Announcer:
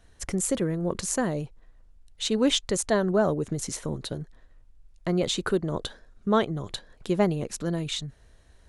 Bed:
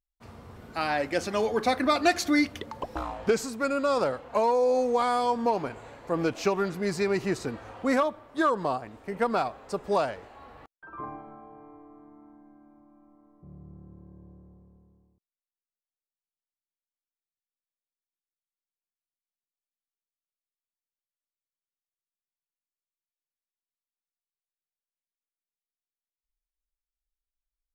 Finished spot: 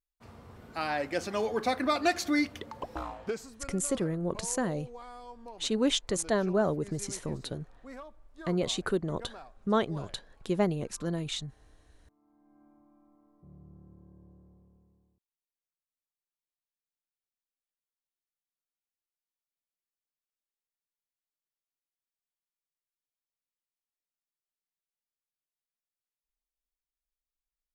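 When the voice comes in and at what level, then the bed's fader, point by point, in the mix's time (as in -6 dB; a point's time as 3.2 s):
3.40 s, -4.0 dB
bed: 3.06 s -4 dB
3.77 s -21.5 dB
12.11 s -21.5 dB
12.62 s -5.5 dB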